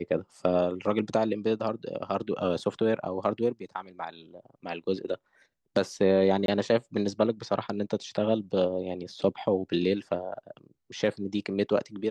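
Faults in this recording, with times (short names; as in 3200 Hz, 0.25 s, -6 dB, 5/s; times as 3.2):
6.46–6.48 gap 22 ms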